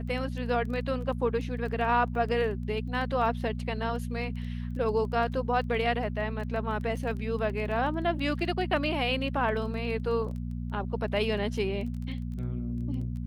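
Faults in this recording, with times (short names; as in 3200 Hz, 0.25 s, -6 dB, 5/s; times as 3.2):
crackle 12/s -37 dBFS
hum 60 Hz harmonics 4 -34 dBFS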